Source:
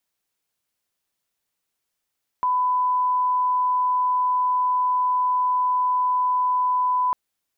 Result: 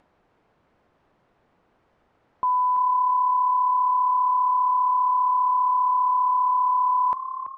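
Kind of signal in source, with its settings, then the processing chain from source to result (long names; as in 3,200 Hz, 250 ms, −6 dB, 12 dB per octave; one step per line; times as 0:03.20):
line-up tone −18 dBFS 4.70 s
echo with shifted repeats 333 ms, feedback 50%, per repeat +35 Hz, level −11.5 dB
low-pass that shuts in the quiet parts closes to 1,000 Hz, open at −18 dBFS
upward compression, threshold −44 dBFS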